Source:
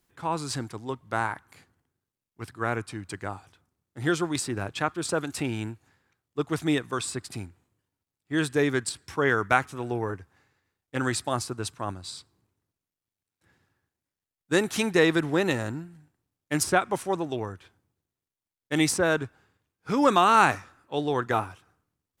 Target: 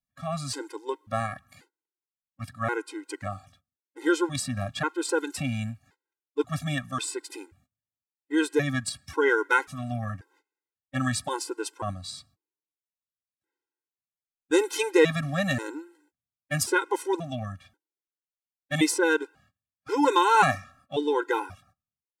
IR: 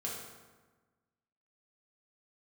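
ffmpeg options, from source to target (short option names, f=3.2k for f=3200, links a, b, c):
-af "agate=range=-21dB:threshold=-59dB:ratio=16:detection=peak,afftfilt=real='re*gt(sin(2*PI*0.93*pts/sr)*(1-2*mod(floor(b*sr/1024/270),2)),0)':imag='im*gt(sin(2*PI*0.93*pts/sr)*(1-2*mod(floor(b*sr/1024/270),2)),0)':win_size=1024:overlap=0.75,volume=3dB"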